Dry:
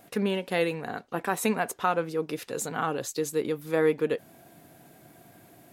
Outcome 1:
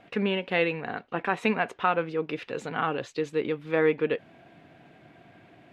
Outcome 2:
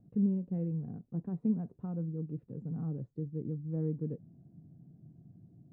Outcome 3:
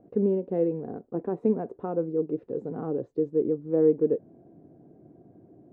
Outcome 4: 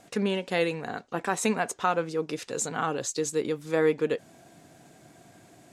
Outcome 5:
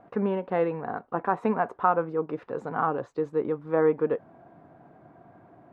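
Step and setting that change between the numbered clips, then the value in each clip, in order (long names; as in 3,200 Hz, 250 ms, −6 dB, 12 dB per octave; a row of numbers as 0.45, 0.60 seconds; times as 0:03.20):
low-pass with resonance, frequency: 2,700, 160, 400, 7,300, 1,100 Hertz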